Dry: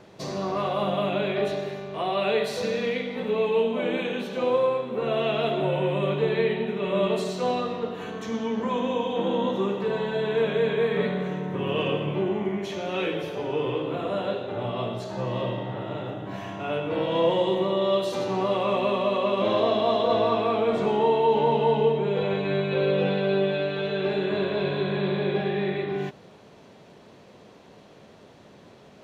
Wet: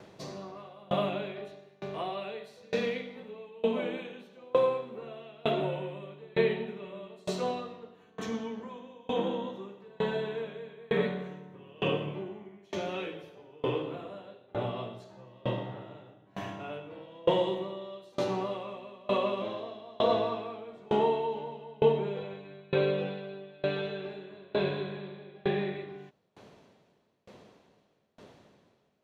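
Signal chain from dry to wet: dB-ramp tremolo decaying 1.1 Hz, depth 29 dB

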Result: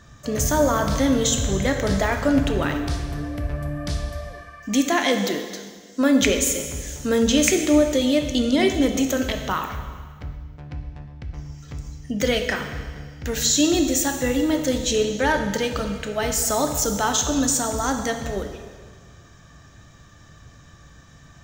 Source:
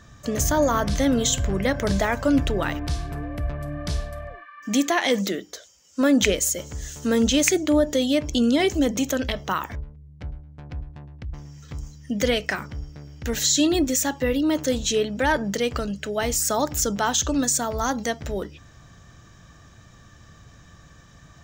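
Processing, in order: plate-style reverb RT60 1.6 s, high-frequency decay 1×, DRR 4.5 dB

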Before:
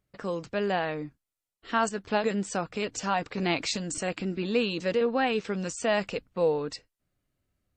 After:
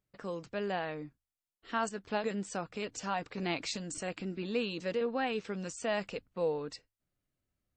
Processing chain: notches 50/100 Hz; gain -7 dB

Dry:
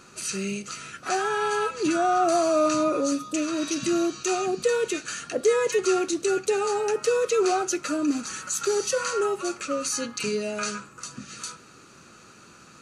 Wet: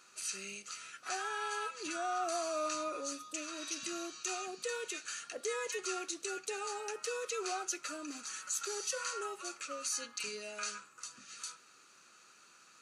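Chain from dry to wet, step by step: HPF 1400 Hz 6 dB/oct; gain -7.5 dB

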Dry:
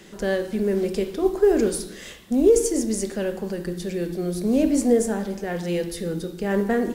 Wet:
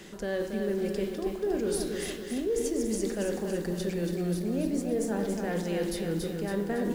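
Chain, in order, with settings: dynamic EQ 8300 Hz, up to -5 dB, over -43 dBFS, Q 1; reverse; compressor, threshold -28 dBFS, peak gain reduction 15.5 dB; reverse; lo-fi delay 0.279 s, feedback 55%, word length 9-bit, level -5.5 dB

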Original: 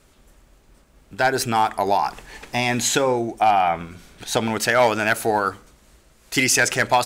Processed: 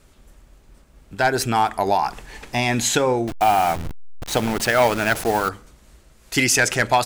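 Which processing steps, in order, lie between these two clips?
3.27–5.49 level-crossing sampler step -25 dBFS; low shelf 140 Hz +5.5 dB

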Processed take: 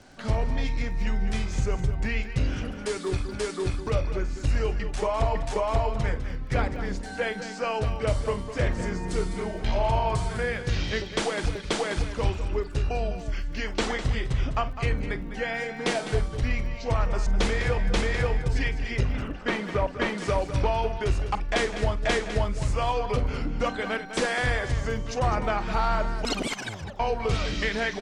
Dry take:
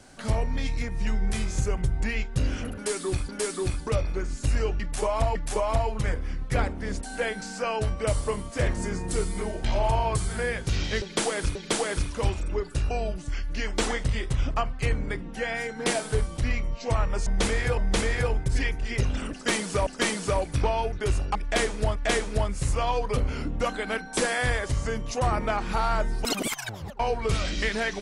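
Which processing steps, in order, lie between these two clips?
LPF 5600 Hz 12 dB/oct, from 19.03 s 2500 Hz, from 20.18 s 5900 Hz; crackle 23/s -44 dBFS; tapped delay 48/204 ms -17/-11 dB

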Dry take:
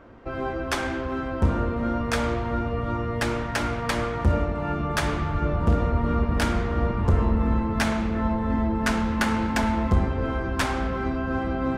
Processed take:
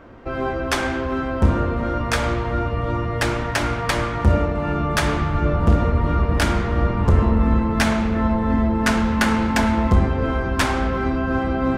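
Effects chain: de-hum 46.59 Hz, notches 36; gain +5.5 dB

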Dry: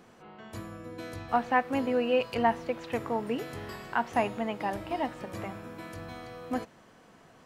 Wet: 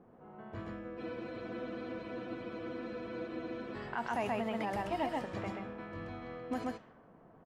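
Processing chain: echo 0.13 s -3 dB; limiter -22 dBFS, peak gain reduction 11 dB; low-pass opened by the level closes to 760 Hz, open at -28 dBFS; spectral freeze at 0.99, 2.77 s; gain -3 dB

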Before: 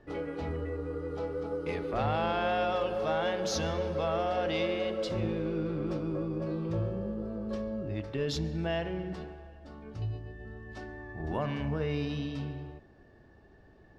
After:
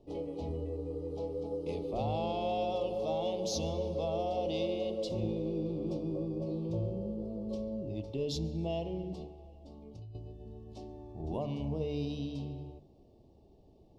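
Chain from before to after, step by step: Butterworth band-stop 1600 Hz, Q 0.68; notches 50/100/150 Hz; 9.26–10.15 compressor 12:1, threshold -43 dBFS, peak gain reduction 12 dB; gain -2 dB

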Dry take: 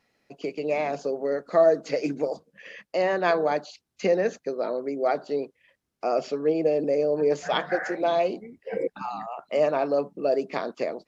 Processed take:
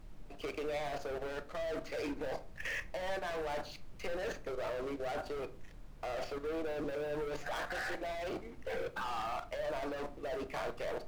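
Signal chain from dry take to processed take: octaver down 2 oct, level -4 dB; LPF 1400 Hz 12 dB/oct; differentiator; reverse; compressor 16:1, threshold -51 dBFS, peak gain reduction 16.5 dB; reverse; sample leveller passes 5; level quantiser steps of 12 dB; added noise brown -61 dBFS; shoebox room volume 310 m³, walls furnished, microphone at 0.54 m; gain +9.5 dB

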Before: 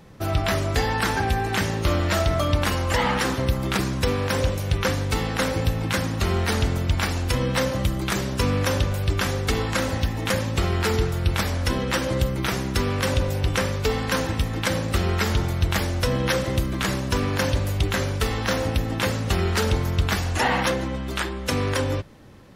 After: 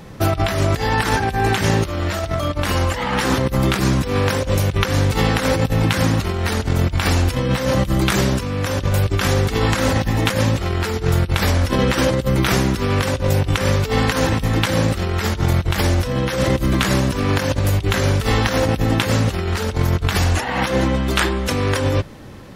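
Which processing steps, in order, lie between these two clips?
negative-ratio compressor -25 dBFS, ratio -0.5; gain +7.5 dB

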